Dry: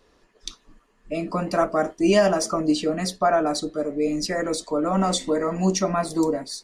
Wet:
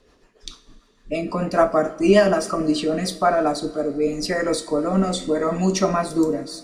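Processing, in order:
rotating-speaker cabinet horn 6.7 Hz, later 0.8 Hz, at 0:03.09
dynamic equaliser 6,200 Hz, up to −6 dB, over −47 dBFS, Q 2.3
coupled-rooms reverb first 0.42 s, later 3 s, from −18 dB, DRR 9 dB
level +4.5 dB

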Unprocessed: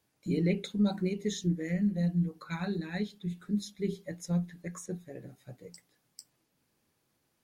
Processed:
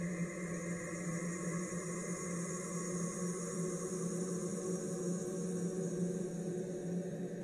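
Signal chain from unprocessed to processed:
wave folding −28 dBFS
extreme stretch with random phases 20×, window 0.50 s, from 0:04.65
on a send: feedback echo with a band-pass in the loop 287 ms, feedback 73%, band-pass 350 Hz, level −9 dB
on the sum: AAC 32 kbit/s 44,100 Hz

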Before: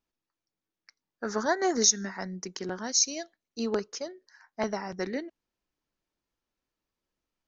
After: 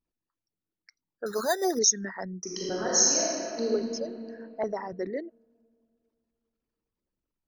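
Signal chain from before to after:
spectral envelope exaggerated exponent 2
0:01.26–0:01.79: bad sample-rate conversion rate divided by 8×, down filtered, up hold
0:02.42–0:03.65: thrown reverb, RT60 2.9 s, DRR −6 dB

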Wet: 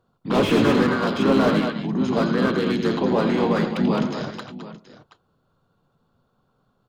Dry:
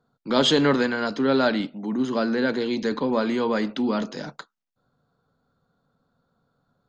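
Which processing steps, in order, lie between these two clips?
pitch-shifted copies added −7 semitones −10 dB, −5 semitones −8 dB, −4 semitones −3 dB
multi-tap delay 86/109/206/214/726 ms −11/−17/−17.5/−9.5/−16 dB
slew-rate limiting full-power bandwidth 130 Hz

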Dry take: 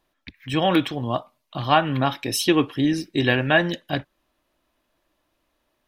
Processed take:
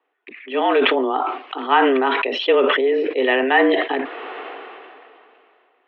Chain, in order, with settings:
single-sideband voice off tune +130 Hz 150–2,800 Hz
level that may fall only so fast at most 23 dB per second
level +1.5 dB

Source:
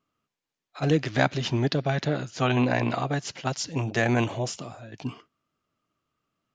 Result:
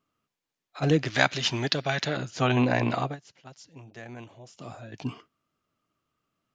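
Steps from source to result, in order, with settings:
0:01.10–0:02.17: tilt shelving filter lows −6.5 dB, about 860 Hz
0:03.04–0:04.69: duck −19 dB, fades 0.13 s

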